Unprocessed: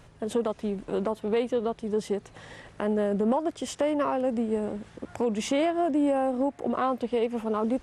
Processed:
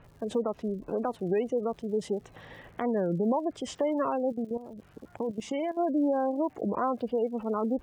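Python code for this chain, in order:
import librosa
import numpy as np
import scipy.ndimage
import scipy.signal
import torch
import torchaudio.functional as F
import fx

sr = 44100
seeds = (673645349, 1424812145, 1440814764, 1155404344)

y = fx.spec_gate(x, sr, threshold_db=-25, keep='strong')
y = fx.env_lowpass(y, sr, base_hz=2900.0, full_db=-23.0)
y = fx.level_steps(y, sr, step_db=14, at=(4.32, 5.79))
y = fx.dmg_crackle(y, sr, seeds[0], per_s=160.0, level_db=-49.0)
y = fx.record_warp(y, sr, rpm=33.33, depth_cents=250.0)
y = y * librosa.db_to_amplitude(-2.0)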